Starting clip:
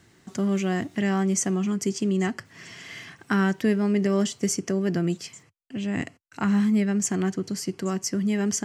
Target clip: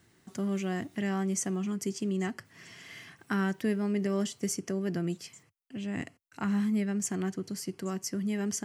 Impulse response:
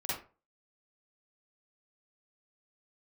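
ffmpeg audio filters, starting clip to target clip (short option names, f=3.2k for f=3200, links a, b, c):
-af "aexciter=amount=1.5:drive=7.7:freq=9.4k,volume=-7dB"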